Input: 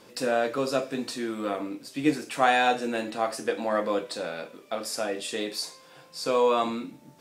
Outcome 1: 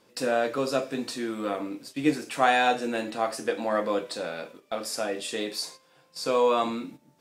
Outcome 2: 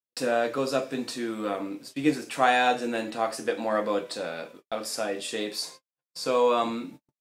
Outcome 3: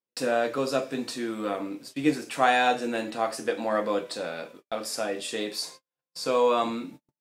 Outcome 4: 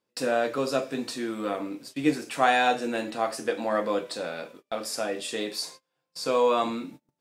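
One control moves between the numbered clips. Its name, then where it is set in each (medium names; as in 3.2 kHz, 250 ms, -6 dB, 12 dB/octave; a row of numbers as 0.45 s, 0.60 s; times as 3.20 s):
gate, range: -9 dB, -58 dB, -45 dB, -29 dB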